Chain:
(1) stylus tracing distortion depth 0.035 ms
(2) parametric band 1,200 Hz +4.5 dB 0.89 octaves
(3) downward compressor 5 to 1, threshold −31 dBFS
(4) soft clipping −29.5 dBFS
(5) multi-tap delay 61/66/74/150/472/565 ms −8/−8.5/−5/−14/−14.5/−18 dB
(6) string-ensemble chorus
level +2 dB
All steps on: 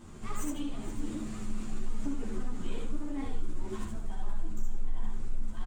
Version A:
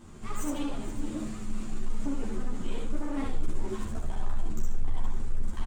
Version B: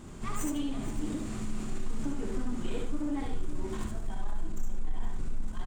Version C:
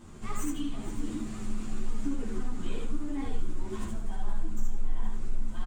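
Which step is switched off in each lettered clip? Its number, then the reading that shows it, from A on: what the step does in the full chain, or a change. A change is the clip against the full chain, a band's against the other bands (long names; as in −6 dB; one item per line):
3, average gain reduction 7.0 dB
6, change in momentary loudness spread +3 LU
4, distortion level −17 dB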